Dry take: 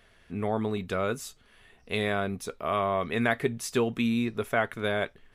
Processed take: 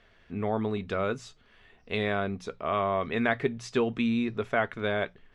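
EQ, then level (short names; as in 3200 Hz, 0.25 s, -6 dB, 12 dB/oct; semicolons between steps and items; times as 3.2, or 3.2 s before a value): LPF 7400 Hz 12 dB/oct; air absorption 75 m; notches 60/120/180 Hz; 0.0 dB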